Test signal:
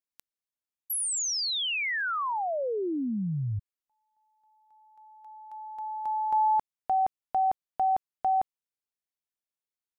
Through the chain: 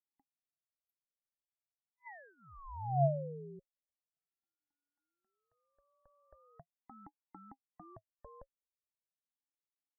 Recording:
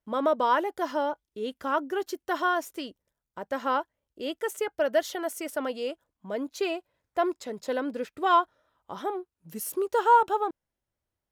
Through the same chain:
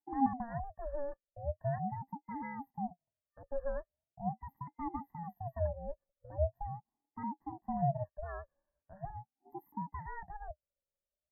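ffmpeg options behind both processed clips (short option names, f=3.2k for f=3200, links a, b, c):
-filter_complex "[0:a]afftfilt=real='re*(1-between(b*sr/4096,1500,12000))':imag='im*(1-between(b*sr/4096,1500,12000))':win_size=4096:overlap=0.75,asplit=3[a][b][c];[a]bandpass=f=270:t=q:w=8,volume=0dB[d];[b]bandpass=f=2.29k:t=q:w=8,volume=-6dB[e];[c]bandpass=f=3.01k:t=q:w=8,volume=-9dB[f];[d][e][f]amix=inputs=3:normalize=0,aeval=exprs='val(0)*sin(2*PI*430*n/s+430*0.35/0.41*sin(2*PI*0.41*n/s))':c=same,volume=7.5dB"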